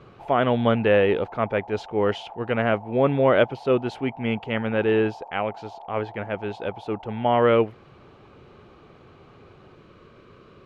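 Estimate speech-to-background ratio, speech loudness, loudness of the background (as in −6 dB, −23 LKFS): 19.0 dB, −23.5 LKFS, −42.5 LKFS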